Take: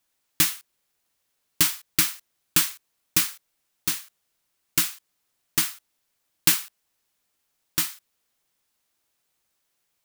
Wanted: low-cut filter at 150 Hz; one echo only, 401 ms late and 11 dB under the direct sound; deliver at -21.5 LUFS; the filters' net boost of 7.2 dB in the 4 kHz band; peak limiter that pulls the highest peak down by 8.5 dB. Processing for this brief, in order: high-pass 150 Hz; peaking EQ 4 kHz +9 dB; peak limiter -8 dBFS; delay 401 ms -11 dB; trim +4.5 dB

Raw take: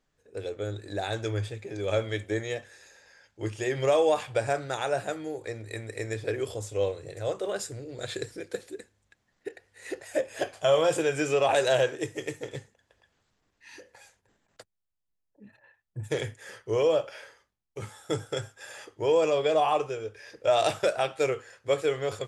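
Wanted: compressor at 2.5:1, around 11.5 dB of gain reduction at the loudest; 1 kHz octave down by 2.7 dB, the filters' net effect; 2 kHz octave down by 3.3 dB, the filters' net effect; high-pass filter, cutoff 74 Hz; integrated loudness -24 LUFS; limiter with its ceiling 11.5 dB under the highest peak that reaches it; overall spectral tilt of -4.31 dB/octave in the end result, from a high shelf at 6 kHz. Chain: high-pass 74 Hz; peaking EQ 1 kHz -3.5 dB; peaking EQ 2 kHz -4 dB; treble shelf 6 kHz +6 dB; compression 2.5:1, threshold -38 dBFS; trim +20.5 dB; peak limiter -14 dBFS

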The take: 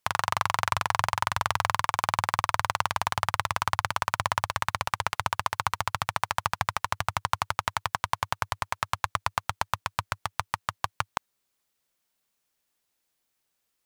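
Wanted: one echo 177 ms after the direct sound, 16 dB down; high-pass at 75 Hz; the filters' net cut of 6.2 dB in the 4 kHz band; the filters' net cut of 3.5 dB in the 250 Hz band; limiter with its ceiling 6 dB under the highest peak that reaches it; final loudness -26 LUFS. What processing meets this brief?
high-pass 75 Hz; peaking EQ 250 Hz -6.5 dB; peaking EQ 4 kHz -8.5 dB; peak limiter -13.5 dBFS; delay 177 ms -16 dB; trim +9 dB

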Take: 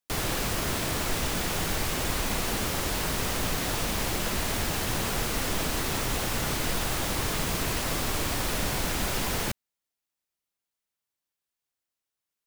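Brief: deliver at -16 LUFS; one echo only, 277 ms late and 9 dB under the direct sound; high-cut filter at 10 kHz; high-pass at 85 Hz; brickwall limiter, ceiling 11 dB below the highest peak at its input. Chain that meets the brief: high-pass 85 Hz; low-pass 10 kHz; peak limiter -27 dBFS; delay 277 ms -9 dB; trim +18.5 dB

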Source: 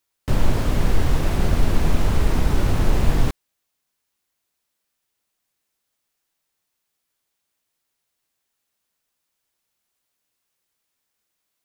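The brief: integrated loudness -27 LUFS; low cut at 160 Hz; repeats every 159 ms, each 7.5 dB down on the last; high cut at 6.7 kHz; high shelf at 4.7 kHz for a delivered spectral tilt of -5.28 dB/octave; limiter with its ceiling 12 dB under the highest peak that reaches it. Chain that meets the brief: high-pass 160 Hz; low-pass 6.7 kHz; treble shelf 4.7 kHz -5.5 dB; peak limiter -26.5 dBFS; feedback delay 159 ms, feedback 42%, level -7.5 dB; trim +7.5 dB

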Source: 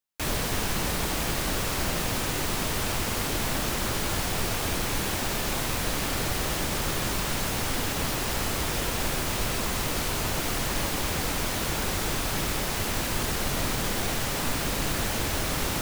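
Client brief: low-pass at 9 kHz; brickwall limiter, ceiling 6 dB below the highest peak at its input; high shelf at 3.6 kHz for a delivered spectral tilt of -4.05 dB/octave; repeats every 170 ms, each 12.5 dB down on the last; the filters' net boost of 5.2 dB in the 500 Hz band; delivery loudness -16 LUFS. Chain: low-pass 9 kHz; peaking EQ 500 Hz +6.5 dB; treble shelf 3.6 kHz -4 dB; peak limiter -20.5 dBFS; feedback delay 170 ms, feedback 24%, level -12.5 dB; trim +14 dB

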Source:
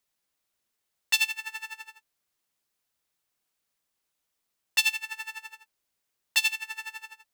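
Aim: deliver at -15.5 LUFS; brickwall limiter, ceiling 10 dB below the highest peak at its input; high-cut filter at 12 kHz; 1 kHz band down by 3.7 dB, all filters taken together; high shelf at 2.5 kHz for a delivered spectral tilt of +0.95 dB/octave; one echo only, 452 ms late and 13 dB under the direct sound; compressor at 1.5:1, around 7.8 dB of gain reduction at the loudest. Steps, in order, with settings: low-pass 12 kHz; peaking EQ 1 kHz -3.5 dB; treble shelf 2.5 kHz -5.5 dB; compression 1.5:1, threshold -45 dBFS; peak limiter -29.5 dBFS; delay 452 ms -13 dB; trim +28 dB

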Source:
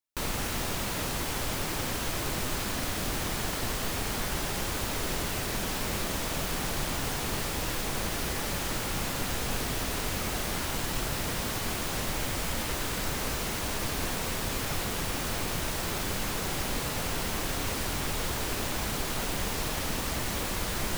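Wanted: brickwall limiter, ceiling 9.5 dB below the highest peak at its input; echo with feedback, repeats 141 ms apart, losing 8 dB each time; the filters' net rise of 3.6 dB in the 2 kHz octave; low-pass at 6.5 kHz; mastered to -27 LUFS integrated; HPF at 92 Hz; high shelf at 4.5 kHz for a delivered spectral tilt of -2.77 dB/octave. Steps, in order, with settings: high-pass 92 Hz; low-pass 6.5 kHz; peaking EQ 2 kHz +4 dB; treble shelf 4.5 kHz +3 dB; peak limiter -27.5 dBFS; feedback delay 141 ms, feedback 40%, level -8 dB; trim +7.5 dB

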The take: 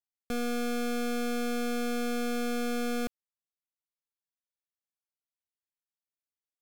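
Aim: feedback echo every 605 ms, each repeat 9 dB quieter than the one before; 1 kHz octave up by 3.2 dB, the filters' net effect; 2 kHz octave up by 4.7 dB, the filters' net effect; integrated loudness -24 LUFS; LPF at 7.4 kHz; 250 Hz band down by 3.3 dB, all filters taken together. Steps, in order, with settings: low-pass 7.4 kHz; peaking EQ 250 Hz -3.5 dB; peaking EQ 1 kHz +4 dB; peaking EQ 2 kHz +5 dB; feedback delay 605 ms, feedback 35%, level -9 dB; trim +8.5 dB

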